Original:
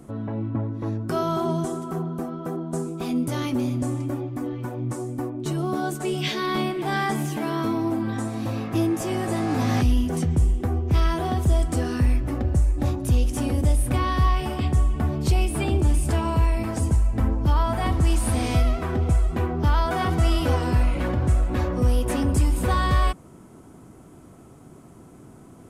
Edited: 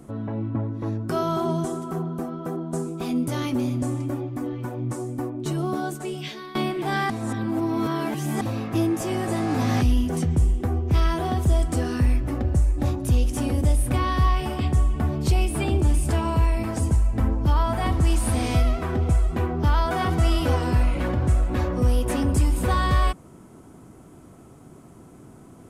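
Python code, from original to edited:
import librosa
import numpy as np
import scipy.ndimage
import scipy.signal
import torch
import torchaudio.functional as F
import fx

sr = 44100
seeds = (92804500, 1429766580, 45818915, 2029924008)

y = fx.edit(x, sr, fx.fade_out_to(start_s=5.66, length_s=0.89, floor_db=-17.0),
    fx.reverse_span(start_s=7.1, length_s=1.31), tone=tone)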